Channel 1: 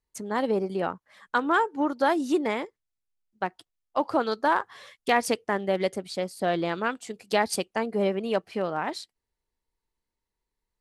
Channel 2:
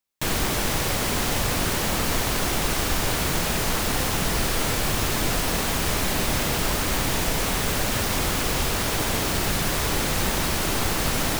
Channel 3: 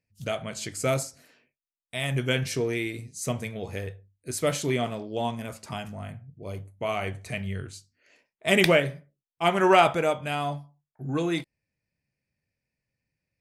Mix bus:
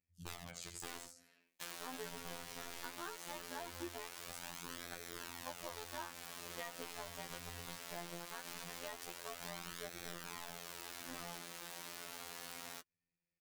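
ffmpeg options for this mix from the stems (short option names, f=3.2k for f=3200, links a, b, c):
-filter_complex "[0:a]acrusher=bits=3:mix=0:aa=0.000001,adelay=1500,volume=-5.5dB[a];[1:a]highpass=f=660:p=1,alimiter=level_in=0.5dB:limit=-24dB:level=0:latency=1,volume=-0.5dB,asoftclip=type=tanh:threshold=-31dB,adelay=1400,volume=2dB[b];[2:a]bandreject=f=590:w=12,alimiter=limit=-13dB:level=0:latency=1:release=476,aeval=exprs='(mod(15.8*val(0)+1,2)-1)/15.8':c=same,volume=-4.5dB,asplit=2[c][d];[d]volume=-8dB,aecho=0:1:85:1[e];[a][b][c][e]amix=inputs=4:normalize=0,afftfilt=real='hypot(re,im)*cos(PI*b)':imag='0':win_size=2048:overlap=0.75,flanger=delay=0.5:depth=7:regen=-27:speed=0.2:shape=sinusoidal,acompressor=threshold=-42dB:ratio=5"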